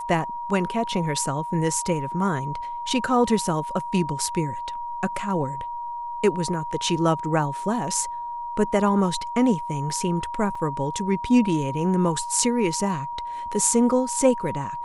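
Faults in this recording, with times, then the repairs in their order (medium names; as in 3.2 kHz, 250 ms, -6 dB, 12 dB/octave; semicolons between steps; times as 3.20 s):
whine 950 Hz -29 dBFS
10.55 s: dropout 4.1 ms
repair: band-stop 950 Hz, Q 30; interpolate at 10.55 s, 4.1 ms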